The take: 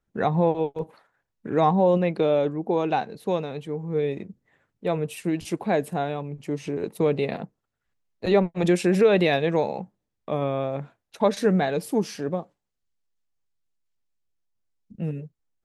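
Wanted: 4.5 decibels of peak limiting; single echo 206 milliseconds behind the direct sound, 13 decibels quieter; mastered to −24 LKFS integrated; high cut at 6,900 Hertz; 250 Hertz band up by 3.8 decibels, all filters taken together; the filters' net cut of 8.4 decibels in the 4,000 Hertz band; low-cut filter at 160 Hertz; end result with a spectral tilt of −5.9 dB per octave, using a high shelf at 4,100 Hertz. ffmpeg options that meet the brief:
ffmpeg -i in.wav -af "highpass=160,lowpass=6900,equalizer=frequency=250:width_type=o:gain=7.5,equalizer=frequency=4000:width_type=o:gain=-7,highshelf=frequency=4100:gain=-5.5,alimiter=limit=-11.5dB:level=0:latency=1,aecho=1:1:206:0.224" out.wav

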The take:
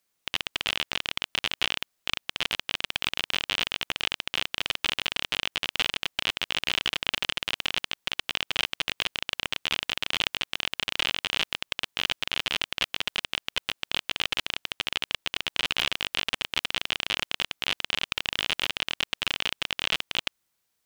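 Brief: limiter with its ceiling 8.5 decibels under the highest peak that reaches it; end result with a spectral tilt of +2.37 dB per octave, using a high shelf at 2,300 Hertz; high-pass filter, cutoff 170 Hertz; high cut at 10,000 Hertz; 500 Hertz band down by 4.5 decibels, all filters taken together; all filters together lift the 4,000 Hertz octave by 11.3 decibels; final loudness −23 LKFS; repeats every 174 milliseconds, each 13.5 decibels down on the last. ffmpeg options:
ffmpeg -i in.wav -af "highpass=170,lowpass=10000,equalizer=frequency=500:width_type=o:gain=-6.5,highshelf=frequency=2300:gain=8,equalizer=frequency=4000:width_type=o:gain=8.5,alimiter=limit=-2.5dB:level=0:latency=1,aecho=1:1:174|348:0.211|0.0444,volume=-2.5dB" out.wav

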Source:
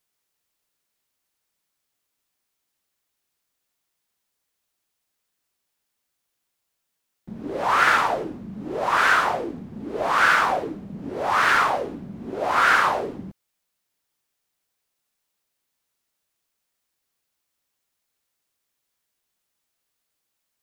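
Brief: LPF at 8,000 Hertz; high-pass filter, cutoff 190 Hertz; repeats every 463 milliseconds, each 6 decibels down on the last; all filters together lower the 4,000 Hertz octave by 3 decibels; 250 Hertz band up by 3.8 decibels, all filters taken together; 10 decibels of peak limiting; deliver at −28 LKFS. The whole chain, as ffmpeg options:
ffmpeg -i in.wav -af "highpass=190,lowpass=8000,equalizer=frequency=250:width_type=o:gain=6.5,equalizer=frequency=4000:width_type=o:gain=-4,alimiter=limit=-14.5dB:level=0:latency=1,aecho=1:1:463|926|1389|1852|2315|2778:0.501|0.251|0.125|0.0626|0.0313|0.0157,volume=-3.5dB" out.wav

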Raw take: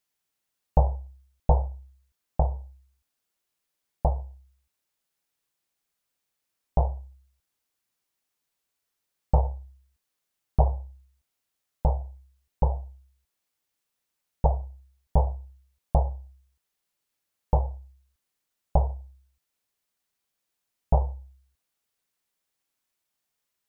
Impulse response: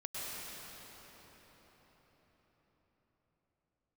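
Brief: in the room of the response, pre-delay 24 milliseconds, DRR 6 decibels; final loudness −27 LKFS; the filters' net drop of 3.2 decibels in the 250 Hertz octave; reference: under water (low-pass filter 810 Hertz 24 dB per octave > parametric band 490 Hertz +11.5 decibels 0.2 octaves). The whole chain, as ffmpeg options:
-filter_complex "[0:a]equalizer=frequency=250:width_type=o:gain=-7.5,asplit=2[link_01][link_02];[1:a]atrim=start_sample=2205,adelay=24[link_03];[link_02][link_03]afir=irnorm=-1:irlink=0,volume=-8.5dB[link_04];[link_01][link_04]amix=inputs=2:normalize=0,lowpass=frequency=810:width=0.5412,lowpass=frequency=810:width=1.3066,equalizer=frequency=490:width_type=o:width=0.2:gain=11.5,volume=4.5dB"

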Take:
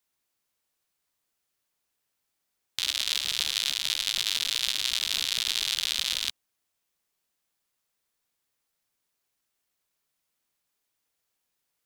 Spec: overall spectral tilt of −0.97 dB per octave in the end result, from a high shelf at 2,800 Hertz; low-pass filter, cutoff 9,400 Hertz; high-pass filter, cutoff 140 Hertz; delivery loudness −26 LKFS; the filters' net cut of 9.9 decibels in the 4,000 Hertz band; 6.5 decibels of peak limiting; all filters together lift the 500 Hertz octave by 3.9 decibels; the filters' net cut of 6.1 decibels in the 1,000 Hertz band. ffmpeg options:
ffmpeg -i in.wav -af "highpass=140,lowpass=9400,equalizer=frequency=500:width_type=o:gain=8,equalizer=frequency=1000:width_type=o:gain=-8.5,highshelf=frequency=2800:gain=-8.5,equalizer=frequency=4000:width_type=o:gain=-5,volume=14dB,alimiter=limit=-8.5dB:level=0:latency=1" out.wav

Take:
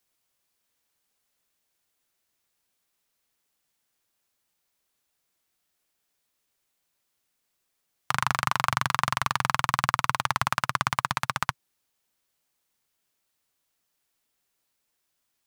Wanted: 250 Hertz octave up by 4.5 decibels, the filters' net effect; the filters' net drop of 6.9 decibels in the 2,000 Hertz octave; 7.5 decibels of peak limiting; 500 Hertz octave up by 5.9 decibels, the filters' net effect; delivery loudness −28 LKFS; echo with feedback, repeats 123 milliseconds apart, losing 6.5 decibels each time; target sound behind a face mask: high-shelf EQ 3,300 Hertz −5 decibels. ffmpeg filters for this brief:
ffmpeg -i in.wav -af "equalizer=frequency=250:width_type=o:gain=6,equalizer=frequency=500:width_type=o:gain=8,equalizer=frequency=2000:width_type=o:gain=-9,alimiter=limit=-12dB:level=0:latency=1,highshelf=frequency=3300:gain=-5,aecho=1:1:123|246|369|492|615|738:0.473|0.222|0.105|0.0491|0.0231|0.0109,volume=5.5dB" out.wav

